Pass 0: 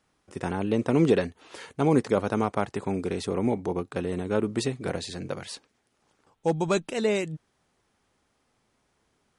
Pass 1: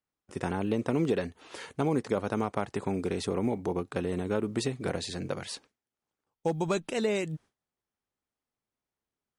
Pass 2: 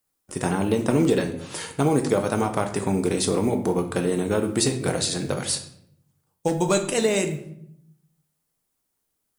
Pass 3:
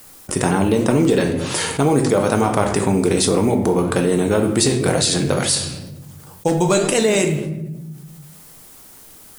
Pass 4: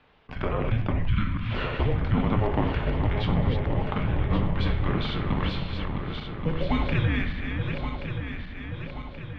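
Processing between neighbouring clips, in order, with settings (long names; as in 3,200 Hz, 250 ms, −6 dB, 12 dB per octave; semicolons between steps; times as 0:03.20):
noise gate with hold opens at −46 dBFS; downward compressor 2.5 to 1, threshold −26 dBFS, peak gain reduction 7.5 dB; floating-point word with a short mantissa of 6 bits
drawn EQ curve 2,500 Hz 0 dB, 5,900 Hz +6 dB, 10,000 Hz +13 dB; on a send at −5 dB: convolution reverb RT60 0.70 s, pre-delay 6 ms; on the sum: level +6 dB
flanger 2 Hz, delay 6.6 ms, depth 7.8 ms, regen +83%; envelope flattener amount 50%; level +8 dB
feedback delay that plays each chunk backwards 564 ms, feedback 71%, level −5.5 dB; single-sideband voice off tune −340 Hz 240–3,500 Hz; gain on a spectral selection 0:01.08–0:01.52, 340–940 Hz −14 dB; level −7 dB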